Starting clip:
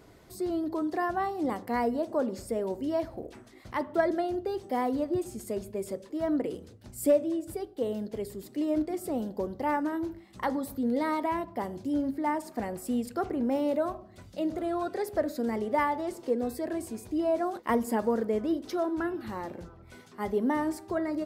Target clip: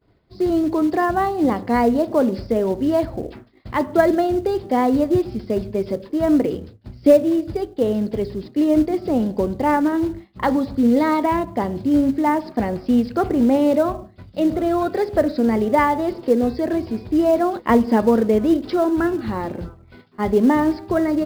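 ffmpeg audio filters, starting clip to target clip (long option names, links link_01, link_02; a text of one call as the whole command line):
ffmpeg -i in.wav -filter_complex "[0:a]aresample=11025,aresample=44100,agate=range=-33dB:threshold=-43dB:ratio=3:detection=peak,lowshelf=frequency=77:gain=-2.5,asplit=2[link_01][link_02];[link_02]acrusher=bits=4:mode=log:mix=0:aa=0.000001,volume=-4dB[link_03];[link_01][link_03]amix=inputs=2:normalize=0,lowshelf=frequency=230:gain=8.5,volume=5dB" out.wav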